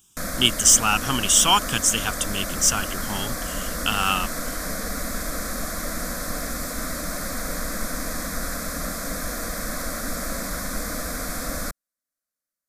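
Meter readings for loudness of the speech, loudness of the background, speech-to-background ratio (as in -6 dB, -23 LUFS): -19.5 LUFS, -29.0 LUFS, 9.5 dB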